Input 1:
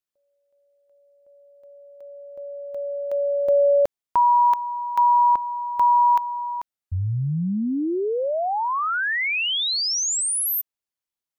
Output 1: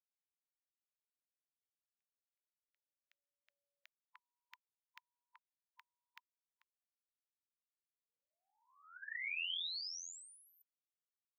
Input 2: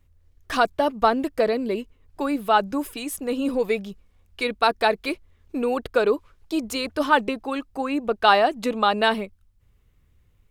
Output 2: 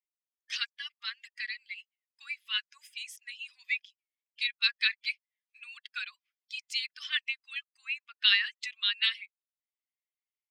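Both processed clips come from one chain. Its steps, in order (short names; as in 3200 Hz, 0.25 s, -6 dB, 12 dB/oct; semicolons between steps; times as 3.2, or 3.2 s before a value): per-bin expansion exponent 1.5; air absorption 140 m; spectral gate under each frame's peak -10 dB weak; steep high-pass 1900 Hz 36 dB/oct; gain +8.5 dB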